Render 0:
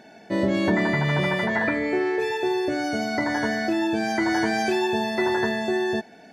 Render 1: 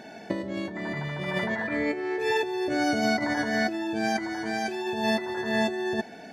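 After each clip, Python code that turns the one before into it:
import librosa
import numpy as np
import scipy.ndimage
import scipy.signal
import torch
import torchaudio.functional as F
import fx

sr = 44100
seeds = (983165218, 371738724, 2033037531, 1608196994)

y = fx.over_compress(x, sr, threshold_db=-27.0, ratio=-0.5)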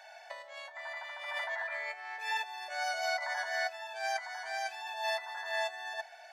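y = scipy.signal.sosfilt(scipy.signal.butter(8, 650.0, 'highpass', fs=sr, output='sos'), x)
y = F.gain(torch.from_numpy(y), -5.0).numpy()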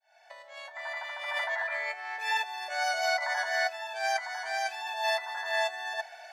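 y = fx.fade_in_head(x, sr, length_s=0.89)
y = F.gain(torch.from_numpy(y), 5.0).numpy()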